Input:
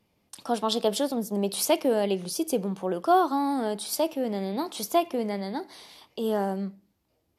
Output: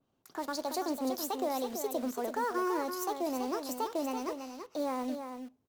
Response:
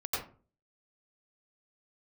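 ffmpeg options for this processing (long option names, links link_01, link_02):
-filter_complex "[0:a]alimiter=limit=-19.5dB:level=0:latency=1:release=105,highshelf=frequency=2000:gain=-8,asetrate=57330,aresample=44100,asplit=2[link_01][link_02];[link_02]acrusher=bits=5:mix=0:aa=0.000001,volume=-11dB[link_03];[link_01][link_03]amix=inputs=2:normalize=0,aecho=1:1:332:0.422,adynamicequalizer=threshold=0.00708:dfrequency=2700:dqfactor=0.7:tfrequency=2700:tqfactor=0.7:attack=5:release=100:ratio=0.375:range=2.5:mode=boostabove:tftype=highshelf,volume=-6.5dB"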